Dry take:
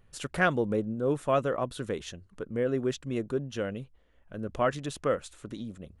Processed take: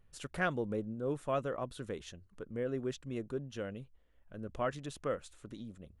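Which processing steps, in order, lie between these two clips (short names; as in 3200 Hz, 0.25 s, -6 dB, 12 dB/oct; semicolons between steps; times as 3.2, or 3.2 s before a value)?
low shelf 60 Hz +6 dB; gain -8 dB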